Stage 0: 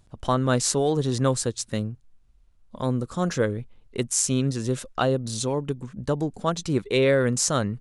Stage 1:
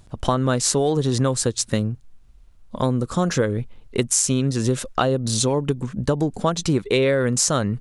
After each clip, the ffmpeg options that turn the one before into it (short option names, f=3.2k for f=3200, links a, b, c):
-af "acompressor=threshold=-25dB:ratio=6,volume=9dB"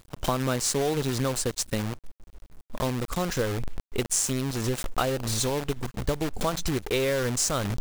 -af "asubboost=boost=7:cutoff=59,acrusher=bits=5:dc=4:mix=0:aa=0.000001,volume=-6dB"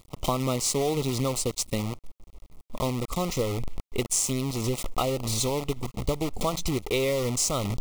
-af "asuperstop=centerf=1600:order=8:qfactor=2.6"